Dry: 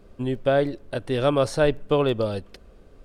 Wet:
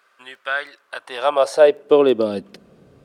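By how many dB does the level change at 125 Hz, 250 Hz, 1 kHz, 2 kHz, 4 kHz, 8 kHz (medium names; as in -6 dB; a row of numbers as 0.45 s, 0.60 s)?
under -10 dB, +1.0 dB, +5.5 dB, +7.0 dB, +3.0 dB, no reading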